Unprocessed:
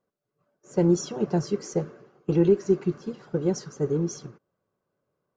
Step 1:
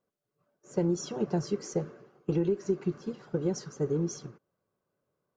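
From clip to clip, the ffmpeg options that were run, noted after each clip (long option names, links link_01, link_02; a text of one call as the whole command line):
ffmpeg -i in.wav -af "acompressor=threshold=-21dB:ratio=6,volume=-2.5dB" out.wav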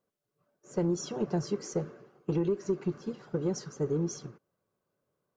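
ffmpeg -i in.wav -af "asoftclip=type=tanh:threshold=-18.5dB" out.wav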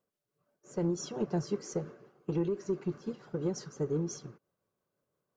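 ffmpeg -i in.wav -af "tremolo=f=5.8:d=0.3,volume=-1dB" out.wav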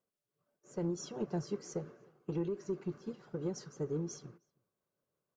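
ffmpeg -i in.wav -filter_complex "[0:a]asplit=2[link_01][link_02];[link_02]adelay=314.9,volume=-29dB,highshelf=frequency=4000:gain=-7.08[link_03];[link_01][link_03]amix=inputs=2:normalize=0,volume=-4.5dB" out.wav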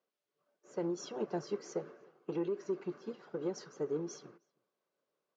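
ffmpeg -i in.wav -af "highpass=310,lowpass=4900,volume=3.5dB" out.wav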